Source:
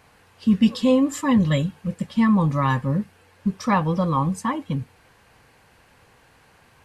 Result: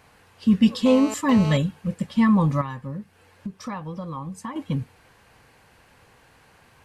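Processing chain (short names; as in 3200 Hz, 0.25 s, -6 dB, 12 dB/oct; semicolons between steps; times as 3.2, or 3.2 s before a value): 0.86–1.57 GSM buzz -32 dBFS; 2.61–4.56 compressor 4:1, threshold -32 dBFS, peak gain reduction 14 dB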